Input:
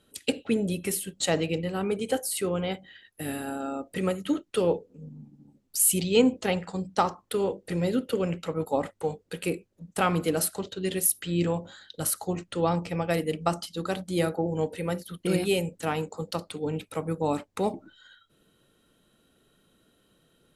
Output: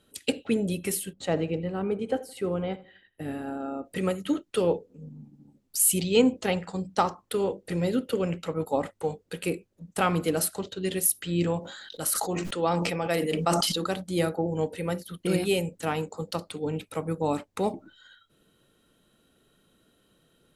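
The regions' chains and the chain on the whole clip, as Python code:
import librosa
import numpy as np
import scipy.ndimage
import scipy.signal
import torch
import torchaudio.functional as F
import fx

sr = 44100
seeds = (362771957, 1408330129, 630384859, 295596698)

y = fx.chain(x, sr, fx.lowpass(hz=1200.0, slope=6),
    fx.echo_feedback(ms=83, feedback_pct=40, wet_db=-20.0), at=(1.13, 3.85))
y = fx.chain(y, sr, fx.peak_eq(hz=83.0, db=-12.5, octaves=2.0),
    fx.sustainer(db_per_s=23.0), at=(11.59, 13.87))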